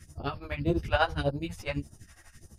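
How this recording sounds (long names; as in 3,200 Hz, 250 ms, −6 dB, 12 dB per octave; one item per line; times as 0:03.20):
phaser sweep stages 2, 1.7 Hz, lowest notch 160–2,100 Hz
tremolo triangle 12 Hz, depth 95%
a shimmering, thickened sound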